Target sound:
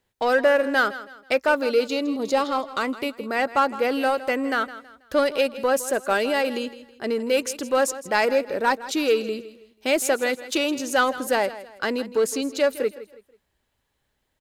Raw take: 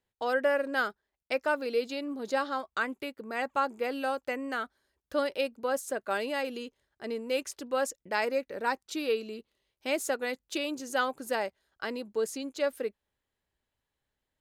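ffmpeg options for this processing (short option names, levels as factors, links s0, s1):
-filter_complex "[0:a]asplit=2[s0][s1];[s1]asoftclip=type=hard:threshold=0.0266,volume=0.562[s2];[s0][s2]amix=inputs=2:normalize=0,asettb=1/sr,asplit=3[s3][s4][s5];[s3]atrim=end=1.894[s6];[s4]atrim=start=1.89:end=3.26,asetpts=PTS-STARTPTS,afade=t=in:d=0.004:c=qsin,afade=t=out:st=1.366:d=0.004:c=qsin,equalizer=f=1600:w=4.6:g=-11[s7];[s5]atrim=start=3.256[s8];[s6][s7]acrossfade=d=0.004:c1=hsin:c2=qsin[s9];[s9][s8]acrossfade=d=0.004:c1=qsin:c2=hsin,aecho=1:1:162|324|486:0.168|0.0571|0.0194,volume=2.11"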